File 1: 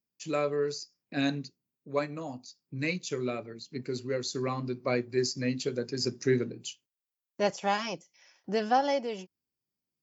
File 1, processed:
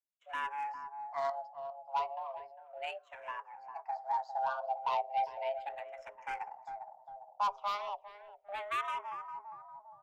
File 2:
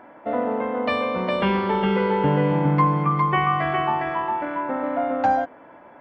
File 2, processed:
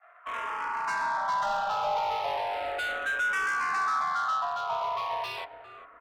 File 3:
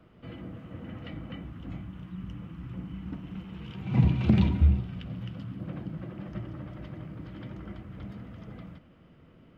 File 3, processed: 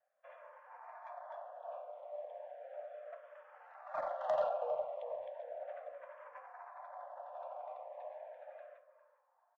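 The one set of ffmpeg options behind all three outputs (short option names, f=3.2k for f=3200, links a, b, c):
-filter_complex "[0:a]agate=range=-15dB:threshold=-48dB:ratio=16:detection=peak,highpass=310,highshelf=f=2k:g=-8.5,acrusher=bits=5:mode=log:mix=0:aa=0.000001,adynamicsmooth=sensitivity=2:basefreq=1.1k,asoftclip=type=hard:threshold=-25.5dB,afreqshift=410,asoftclip=type=tanh:threshold=-25.5dB,asplit=2[a][b];[b]adelay=403,lowpass=f=820:p=1,volume=-8dB,asplit=2[c][d];[d]adelay=403,lowpass=f=820:p=1,volume=0.53,asplit=2[e][f];[f]adelay=403,lowpass=f=820:p=1,volume=0.53,asplit=2[g][h];[h]adelay=403,lowpass=f=820:p=1,volume=0.53,asplit=2[i][j];[j]adelay=403,lowpass=f=820:p=1,volume=0.53,asplit=2[k][l];[l]adelay=403,lowpass=f=820:p=1,volume=0.53[m];[a][c][e][g][i][k][m]amix=inputs=7:normalize=0,asplit=2[n][o];[o]afreqshift=-0.35[p];[n][p]amix=inputs=2:normalize=1,volume=3dB"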